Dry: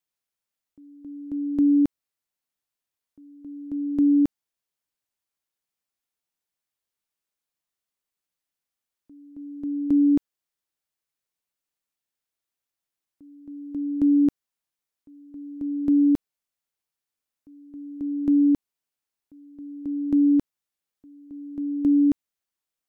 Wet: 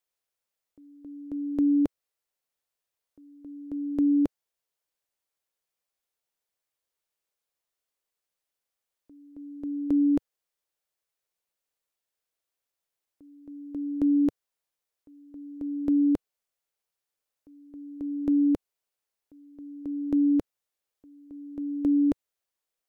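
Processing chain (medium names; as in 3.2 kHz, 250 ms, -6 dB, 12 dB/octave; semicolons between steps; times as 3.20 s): graphic EQ 125/250/500 Hz -3/-6/+6 dB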